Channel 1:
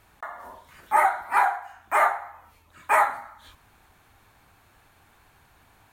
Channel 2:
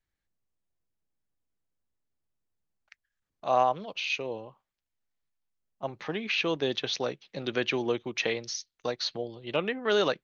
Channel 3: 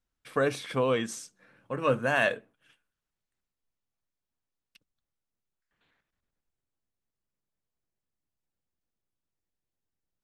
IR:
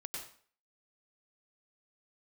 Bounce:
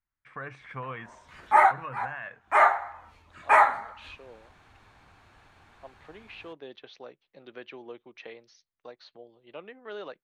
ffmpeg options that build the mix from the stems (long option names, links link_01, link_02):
-filter_complex "[0:a]adelay=600,volume=1.5dB[link_01];[1:a]highpass=frequency=460:poles=1,volume=-10.5dB[link_02];[2:a]equalizer=frequency=125:width_type=o:width=1:gain=5,equalizer=frequency=250:width_type=o:width=1:gain=-6,equalizer=frequency=500:width_type=o:width=1:gain=-7,equalizer=frequency=1000:width_type=o:width=1:gain=6,equalizer=frequency=2000:width_type=o:width=1:gain=11,equalizer=frequency=4000:width_type=o:width=1:gain=-6,equalizer=frequency=8000:width_type=o:width=1:gain=7,volume=-7.5dB,asplit=2[link_03][link_04];[link_04]apad=whole_len=287884[link_05];[link_01][link_05]sidechaincompress=threshold=-47dB:ratio=12:attack=16:release=185[link_06];[link_02][link_03]amix=inputs=2:normalize=0,lowpass=frequency=1500:poles=1,alimiter=level_in=3.5dB:limit=-24dB:level=0:latency=1:release=405,volume=-3.5dB,volume=0dB[link_07];[link_06][link_07]amix=inputs=2:normalize=0,lowpass=5300"